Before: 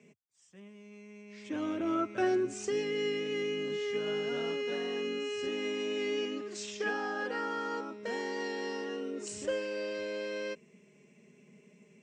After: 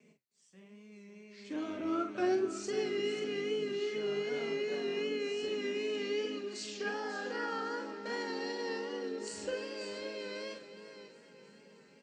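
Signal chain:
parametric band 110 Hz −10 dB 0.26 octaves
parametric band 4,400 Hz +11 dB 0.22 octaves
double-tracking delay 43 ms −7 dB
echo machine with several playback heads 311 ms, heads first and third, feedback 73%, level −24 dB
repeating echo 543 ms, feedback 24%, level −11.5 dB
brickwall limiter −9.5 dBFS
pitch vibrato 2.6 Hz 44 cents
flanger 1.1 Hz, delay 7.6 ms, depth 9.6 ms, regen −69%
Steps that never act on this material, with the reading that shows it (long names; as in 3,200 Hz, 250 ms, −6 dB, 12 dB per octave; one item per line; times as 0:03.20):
brickwall limiter −9.5 dBFS: peak of its input −17.5 dBFS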